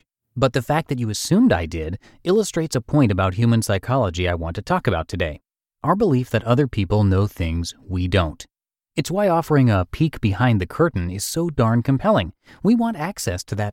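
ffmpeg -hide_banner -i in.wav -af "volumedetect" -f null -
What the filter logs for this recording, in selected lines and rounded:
mean_volume: -20.1 dB
max_volume: -4.3 dB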